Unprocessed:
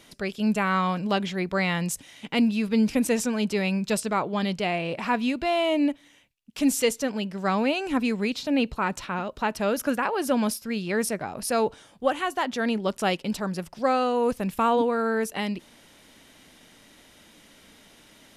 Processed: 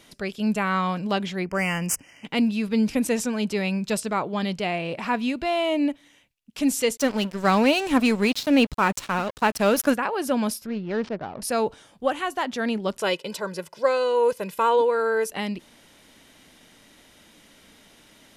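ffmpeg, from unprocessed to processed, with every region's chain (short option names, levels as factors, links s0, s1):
-filter_complex "[0:a]asettb=1/sr,asplit=3[s0][s1][s2];[s0]atrim=end=1.454[s3];[s1]atrim=start=1.45:end=2.25,asetpts=PTS-STARTPTS,afade=t=in:d=0.004:c=qsin,afade=t=out:st=0.796:d=0.004:c=qsin,aemphasis=mode=production:type=50fm,adynamicsmooth=sensitivity=7:basefreq=2900,asuperstop=centerf=3800:order=20:qfactor=2.4[s4];[s2]atrim=start=2.246[s5];[s3][s4]acrossfade=d=0.004:c1=hsin:c2=qsin[s6];[s6][s5]acrossfade=d=0.004:c1=qsin:c2=hsin,asettb=1/sr,asplit=3[s7][s8][s9];[s7]atrim=end=6.974[s10];[s8]atrim=start=6.97:end=9.94,asetpts=PTS-STARTPTS,afade=t=in:d=0.004:c=qsin,afade=t=out:st=2.966:d=0.004:c=qsin,highshelf=f=5500:g=5,acontrast=59,aeval=exprs='sgn(val(0))*max(abs(val(0))-0.0224,0)':c=same[s11];[s9]atrim=start=9.936[s12];[s10][s11]acrossfade=d=0.004:c1=hsin:c2=qsin[s13];[s13][s12]acrossfade=d=0.004:c1=qsin:c2=hsin,asettb=1/sr,asplit=3[s14][s15][s16];[s14]atrim=end=10.664[s17];[s15]atrim=start=10.66:end=11.42,asetpts=PTS-STARTPTS,afade=t=in:d=0.004:c=qsin,afade=t=out:st=0.756:d=0.004:c=qsin,equalizer=f=2200:t=o:w=0.79:g=-8,adynamicsmooth=sensitivity=6.5:basefreq=560,lowpass=f=4900:w=0.5412,lowpass=f=4900:w=1.3066[s18];[s16]atrim=start=11.416[s19];[s17][s18]acrossfade=d=0.004:c1=hsin:c2=qsin[s20];[s20][s19]acrossfade=d=0.004:c1=qsin:c2=hsin,asettb=1/sr,asplit=3[s21][s22][s23];[s21]atrim=end=13.014[s24];[s22]atrim=start=13.01:end=15.3,asetpts=PTS-STARTPTS,afade=t=in:d=0.004:c=qsin,afade=t=out:st=2.286:d=0.004:c=qsin,highpass=210,aecho=1:1:2:0.73,atrim=end_sample=100989[s25];[s23]atrim=start=15.296[s26];[s24][s25]acrossfade=d=0.004:c1=hsin:c2=qsin[s27];[s27][s26]acrossfade=d=0.004:c1=qsin:c2=hsin"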